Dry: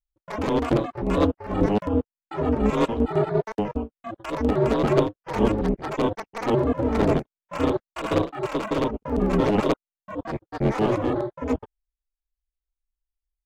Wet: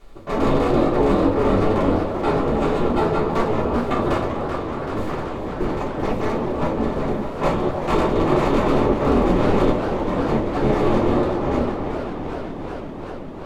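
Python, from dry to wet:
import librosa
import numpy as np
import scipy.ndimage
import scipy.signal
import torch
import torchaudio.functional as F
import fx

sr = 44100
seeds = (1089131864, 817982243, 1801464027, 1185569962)

y = fx.bin_compress(x, sr, power=0.4)
y = fx.doppler_pass(y, sr, speed_mps=12, closest_m=10.0, pass_at_s=5.08)
y = fx.over_compress(y, sr, threshold_db=-31.0, ratio=-1.0)
y = fx.echo_stepped(y, sr, ms=304, hz=660.0, octaves=0.7, feedback_pct=70, wet_db=-5.5)
y = fx.room_shoebox(y, sr, seeds[0], volume_m3=130.0, walls='furnished', distance_m=3.3)
y = fx.echo_warbled(y, sr, ms=386, feedback_pct=80, rate_hz=2.8, cents=142, wet_db=-10.0)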